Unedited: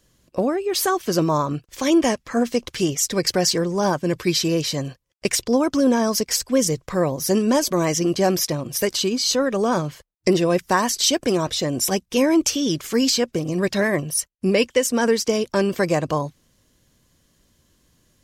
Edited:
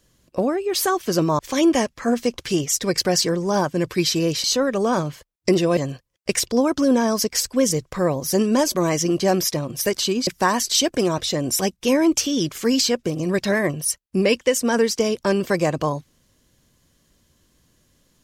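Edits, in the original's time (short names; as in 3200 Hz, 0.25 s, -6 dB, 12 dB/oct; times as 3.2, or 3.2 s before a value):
1.39–1.68 cut
9.23–10.56 move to 4.73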